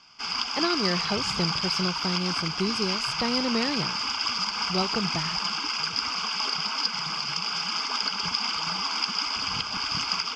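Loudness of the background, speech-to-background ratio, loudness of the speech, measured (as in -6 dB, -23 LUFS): -26.5 LUFS, -3.5 dB, -30.0 LUFS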